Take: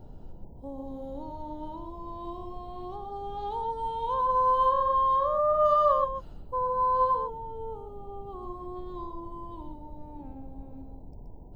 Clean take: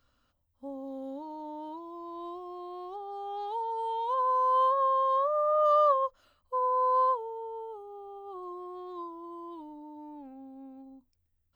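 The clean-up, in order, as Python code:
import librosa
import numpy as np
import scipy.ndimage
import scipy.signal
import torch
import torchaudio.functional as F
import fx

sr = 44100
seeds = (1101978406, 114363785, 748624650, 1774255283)

y = fx.noise_reduce(x, sr, print_start_s=11.02, print_end_s=11.52, reduce_db=27.0)
y = fx.fix_echo_inverse(y, sr, delay_ms=125, level_db=-6.0)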